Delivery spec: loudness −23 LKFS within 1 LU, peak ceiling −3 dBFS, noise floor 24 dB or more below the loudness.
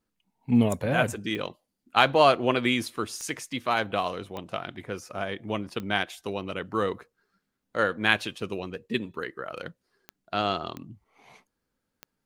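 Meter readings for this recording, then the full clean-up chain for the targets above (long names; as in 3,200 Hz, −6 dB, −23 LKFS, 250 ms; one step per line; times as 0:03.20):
number of clicks 7; integrated loudness −27.5 LKFS; sample peak −3.0 dBFS; target loudness −23.0 LKFS
→ click removal
level +4.5 dB
brickwall limiter −3 dBFS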